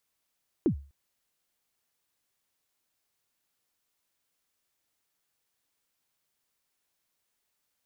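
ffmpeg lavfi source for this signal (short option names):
-f lavfi -i "aevalsrc='0.133*pow(10,-3*t/0.36)*sin(2*PI*(390*0.091/log(70/390)*(exp(log(70/390)*min(t,0.091)/0.091)-1)+70*max(t-0.091,0)))':d=0.25:s=44100"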